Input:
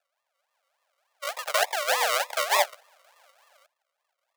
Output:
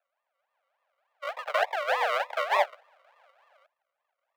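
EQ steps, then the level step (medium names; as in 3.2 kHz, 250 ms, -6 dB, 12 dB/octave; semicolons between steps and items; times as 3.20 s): three-band isolator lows -22 dB, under 390 Hz, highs -21 dB, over 3.2 kHz; bass shelf 490 Hz +7.5 dB; -2.0 dB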